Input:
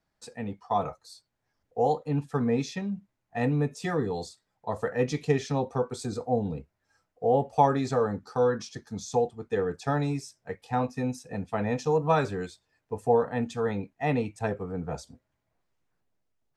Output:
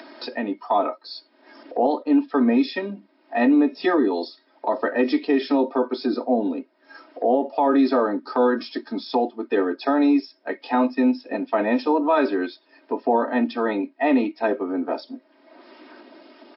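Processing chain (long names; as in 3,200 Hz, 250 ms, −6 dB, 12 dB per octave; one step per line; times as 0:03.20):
Butterworth high-pass 250 Hz 48 dB per octave
low-shelf EQ 490 Hz +8 dB
comb filter 3.2 ms, depth 70%
brickwall limiter −16.5 dBFS, peak gain reduction 11.5 dB
upward compression, threshold −28 dBFS
level +6.5 dB
MP3 40 kbit/s 12,000 Hz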